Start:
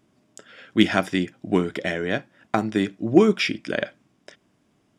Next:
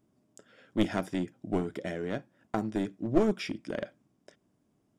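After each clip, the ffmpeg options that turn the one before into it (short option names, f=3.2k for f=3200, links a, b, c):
-af "equalizer=f=2.6k:t=o:w=2.6:g=-9.5,aeval=exprs='clip(val(0),-1,0.0944)':c=same,volume=-6dB"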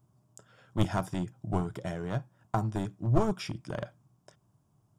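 -af "equalizer=f=125:t=o:w=1:g=11,equalizer=f=250:t=o:w=1:g=-12,equalizer=f=500:t=o:w=1:g=-7,equalizer=f=1k:t=o:w=1:g=6,equalizer=f=2k:t=o:w=1:g=-10,equalizer=f=4k:t=o:w=1:g=-4,volume=4dB"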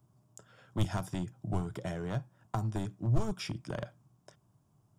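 -filter_complex "[0:a]acrossover=split=130|3000[a][b][c];[b]acompressor=threshold=-34dB:ratio=4[d];[a][d][c]amix=inputs=3:normalize=0"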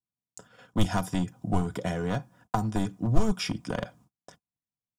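-af "agate=range=-38dB:threshold=-59dB:ratio=16:detection=peak,aecho=1:1:4.1:0.52,volume=7dB"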